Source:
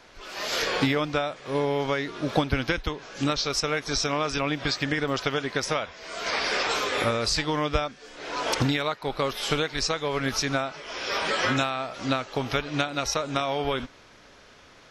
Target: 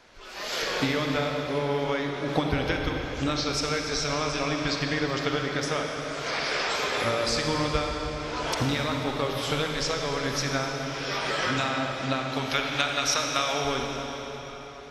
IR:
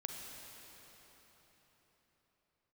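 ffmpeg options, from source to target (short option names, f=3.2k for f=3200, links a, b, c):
-filter_complex "[0:a]asettb=1/sr,asplit=3[a][b][c];[a]atrim=end=12.294[d];[b]atrim=start=12.29:end=13.54,asetpts=PTS-STARTPTS,afade=t=in:d=0.004:c=qsin,afade=t=out:st=1.246:d=0.004:c=qsin,tiltshelf=f=710:g=-6.5[e];[c]atrim=start=13.536[f];[d][e]acrossfade=d=0.004:c1=hsin:c2=qsin[g];[g][f]acrossfade=d=0.004:c1=qsin:c2=hsin[h];[1:a]atrim=start_sample=2205[i];[h][i]afir=irnorm=-1:irlink=0"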